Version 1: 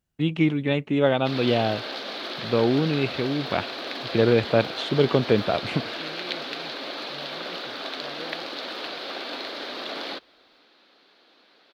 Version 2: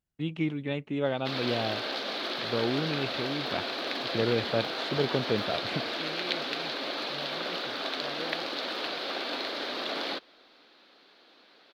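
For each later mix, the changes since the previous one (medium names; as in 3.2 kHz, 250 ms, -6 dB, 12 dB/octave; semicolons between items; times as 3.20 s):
first voice -8.5 dB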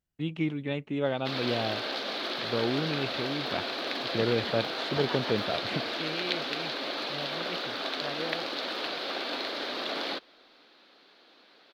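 second voice +4.0 dB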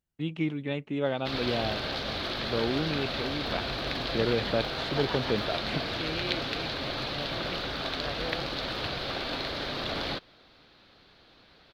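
background: remove high-pass 250 Hz 24 dB/octave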